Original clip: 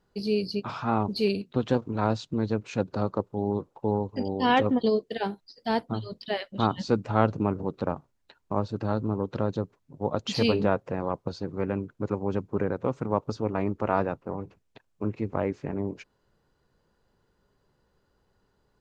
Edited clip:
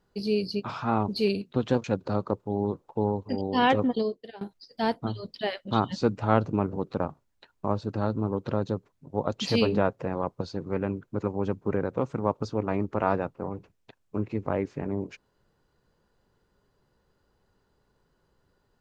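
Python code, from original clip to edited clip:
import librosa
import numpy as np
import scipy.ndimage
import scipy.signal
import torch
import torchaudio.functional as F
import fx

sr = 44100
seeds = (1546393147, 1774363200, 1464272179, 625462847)

y = fx.edit(x, sr, fx.cut(start_s=1.84, length_s=0.87),
    fx.fade_out_to(start_s=4.66, length_s=0.62, floor_db=-21.0), tone=tone)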